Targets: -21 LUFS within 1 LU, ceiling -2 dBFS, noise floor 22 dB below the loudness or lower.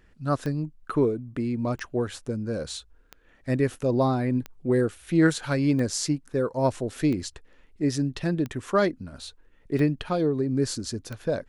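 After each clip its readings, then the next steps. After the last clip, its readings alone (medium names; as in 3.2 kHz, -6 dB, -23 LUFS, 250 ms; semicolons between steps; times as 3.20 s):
clicks found 9; loudness -26.5 LUFS; peak level -9.0 dBFS; loudness target -21.0 LUFS
-> de-click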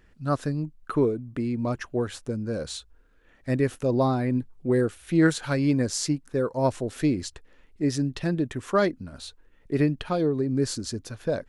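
clicks found 0; loudness -26.5 LUFS; peak level -9.0 dBFS; loudness target -21.0 LUFS
-> trim +5.5 dB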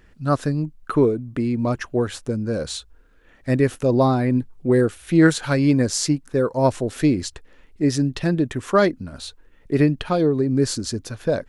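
loudness -21.0 LUFS; peak level -3.5 dBFS; noise floor -52 dBFS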